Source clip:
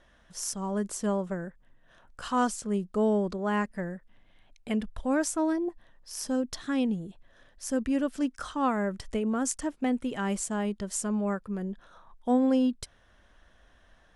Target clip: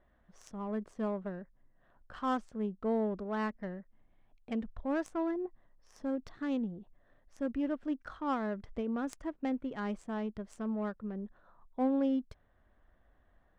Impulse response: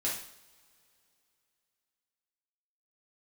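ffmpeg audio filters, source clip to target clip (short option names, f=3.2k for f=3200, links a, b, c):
-af "asetrate=45938,aresample=44100,adynamicsmooth=sensitivity=2.5:basefreq=1.6k,volume=-6dB"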